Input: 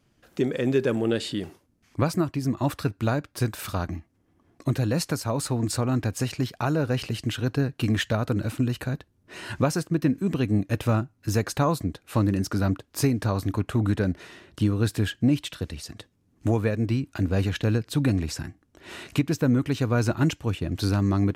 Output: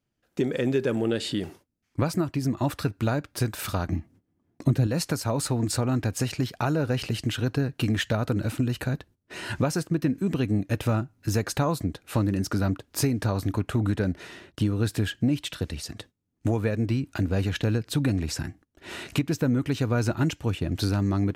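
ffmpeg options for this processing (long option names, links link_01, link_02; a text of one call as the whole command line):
ffmpeg -i in.wav -filter_complex "[0:a]asettb=1/sr,asplit=3[link_01][link_02][link_03];[link_01]atrim=end=3.924[link_04];[link_02]atrim=start=3.92:end=4.87,asetpts=PTS-STARTPTS,afade=type=in:duration=0.004:curve=qsin,afade=type=out:start_time=0.946:duration=0.004:curve=qsin,equalizer=frequency=170:width=0.5:gain=8.5[link_05];[link_03]atrim=start=4.866[link_06];[link_04][link_05]acrossfade=duration=0.004:curve1=hsin:curve2=qsin[link_07];[link_07][link_06]acrossfade=duration=0.004:curve1=qsin:curve2=hsin,agate=range=-17dB:threshold=-51dB:ratio=16:detection=peak,bandreject=frequency=1100:width=17,acompressor=threshold=-26dB:ratio=2,volume=2.5dB" out.wav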